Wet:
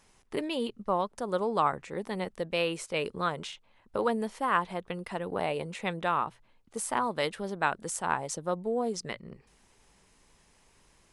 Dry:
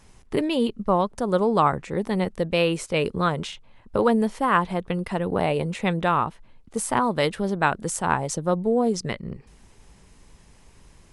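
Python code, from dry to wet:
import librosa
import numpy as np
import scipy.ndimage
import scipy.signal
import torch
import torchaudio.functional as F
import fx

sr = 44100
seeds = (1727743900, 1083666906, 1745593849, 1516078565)

y = fx.low_shelf(x, sr, hz=270.0, db=-10.0)
y = fx.hum_notches(y, sr, base_hz=60, count=2)
y = y * librosa.db_to_amplitude(-5.5)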